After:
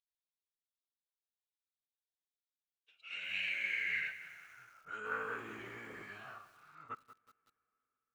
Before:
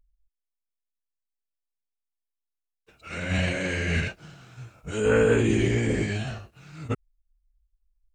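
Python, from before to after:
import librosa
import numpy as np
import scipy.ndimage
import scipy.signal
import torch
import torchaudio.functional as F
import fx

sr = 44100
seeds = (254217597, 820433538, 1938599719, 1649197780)

p1 = fx.dynamic_eq(x, sr, hz=670.0, q=0.7, threshold_db=-35.0, ratio=4.0, max_db=-6)
p2 = np.clip(p1, -10.0 ** (-23.5 / 20.0), 10.0 ** (-23.5 / 20.0))
p3 = p1 + (p2 * librosa.db_to_amplitude(-5.5))
p4 = fx.rev_double_slope(p3, sr, seeds[0], early_s=0.46, late_s=4.1, knee_db=-18, drr_db=19.0)
p5 = fx.filter_sweep_bandpass(p4, sr, from_hz=3700.0, to_hz=1200.0, start_s=2.53, end_s=5.18, q=5.0)
p6 = fx.echo_crushed(p5, sr, ms=185, feedback_pct=55, bits=9, wet_db=-13.5)
y = p6 * librosa.db_to_amplitude(-3.0)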